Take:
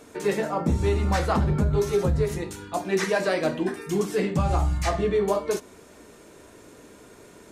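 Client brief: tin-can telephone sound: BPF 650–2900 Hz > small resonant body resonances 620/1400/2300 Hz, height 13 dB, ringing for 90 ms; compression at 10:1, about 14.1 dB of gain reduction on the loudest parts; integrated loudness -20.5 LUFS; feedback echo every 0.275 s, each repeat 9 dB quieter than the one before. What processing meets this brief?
compressor 10:1, threshold -33 dBFS; BPF 650–2900 Hz; feedback echo 0.275 s, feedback 35%, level -9 dB; small resonant body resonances 620/1400/2300 Hz, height 13 dB, ringing for 90 ms; gain +20.5 dB

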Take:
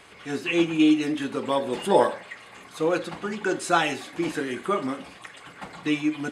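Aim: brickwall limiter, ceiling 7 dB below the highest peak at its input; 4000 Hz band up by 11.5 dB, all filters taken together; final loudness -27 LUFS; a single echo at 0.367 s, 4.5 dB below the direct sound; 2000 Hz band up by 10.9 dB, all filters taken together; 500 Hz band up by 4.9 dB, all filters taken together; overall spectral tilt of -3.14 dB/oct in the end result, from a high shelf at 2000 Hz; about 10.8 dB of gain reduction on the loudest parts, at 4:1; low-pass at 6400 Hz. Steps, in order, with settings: LPF 6400 Hz; bell 500 Hz +5 dB; high shelf 2000 Hz +7 dB; bell 2000 Hz +8.5 dB; bell 4000 Hz +5 dB; compressor 4:1, threshold -22 dBFS; limiter -17.5 dBFS; echo 0.367 s -4.5 dB

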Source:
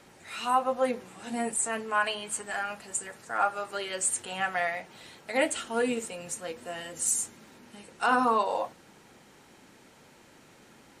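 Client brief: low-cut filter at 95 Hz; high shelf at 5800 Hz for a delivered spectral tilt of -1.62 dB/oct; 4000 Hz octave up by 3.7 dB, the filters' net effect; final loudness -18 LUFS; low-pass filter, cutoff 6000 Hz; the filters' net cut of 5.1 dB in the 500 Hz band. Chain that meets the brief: HPF 95 Hz; LPF 6000 Hz; bell 500 Hz -6 dB; bell 4000 Hz +7.5 dB; high shelf 5800 Hz -4 dB; gain +13.5 dB

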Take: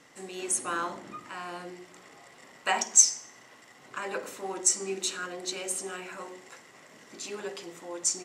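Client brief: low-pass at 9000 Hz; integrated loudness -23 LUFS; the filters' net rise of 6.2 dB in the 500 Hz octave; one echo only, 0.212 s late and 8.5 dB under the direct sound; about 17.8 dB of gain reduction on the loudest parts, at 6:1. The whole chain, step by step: LPF 9000 Hz; bell 500 Hz +8.5 dB; compressor 6:1, threshold -34 dBFS; echo 0.212 s -8.5 dB; gain +15 dB

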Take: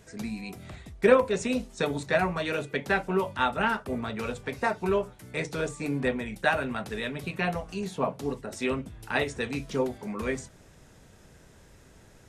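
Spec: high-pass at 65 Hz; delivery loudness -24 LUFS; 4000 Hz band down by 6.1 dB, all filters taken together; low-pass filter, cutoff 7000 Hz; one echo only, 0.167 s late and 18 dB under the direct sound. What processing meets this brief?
HPF 65 Hz; LPF 7000 Hz; bell 4000 Hz -7.5 dB; echo 0.167 s -18 dB; gain +5.5 dB

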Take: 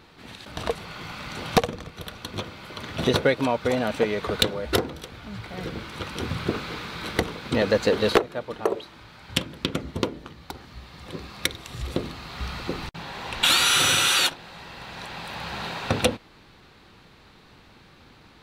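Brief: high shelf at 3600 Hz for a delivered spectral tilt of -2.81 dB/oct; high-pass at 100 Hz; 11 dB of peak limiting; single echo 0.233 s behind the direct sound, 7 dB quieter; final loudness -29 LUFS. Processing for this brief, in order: HPF 100 Hz; high shelf 3600 Hz +5.5 dB; limiter -14 dBFS; echo 0.233 s -7 dB; gain -1 dB

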